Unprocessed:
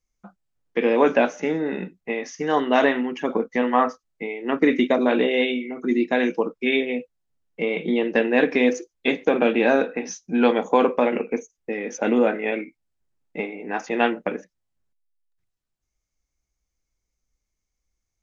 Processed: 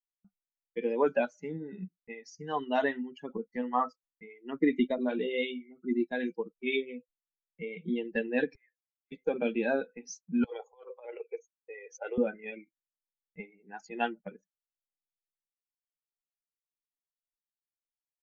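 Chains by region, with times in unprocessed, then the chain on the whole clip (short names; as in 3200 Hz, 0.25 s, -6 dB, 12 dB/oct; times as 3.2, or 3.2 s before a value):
8.55–9.12 auto-wah 740–1800 Hz, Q 6.8, up, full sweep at -14.5 dBFS + compressor 4:1, threshold -40 dBFS
10.44–12.18 steep high-pass 390 Hz + negative-ratio compressor -23 dBFS, ratio -0.5 + air absorption 100 m
whole clip: per-bin expansion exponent 2; gate with hold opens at -56 dBFS; low shelf 140 Hz +10 dB; gain -6.5 dB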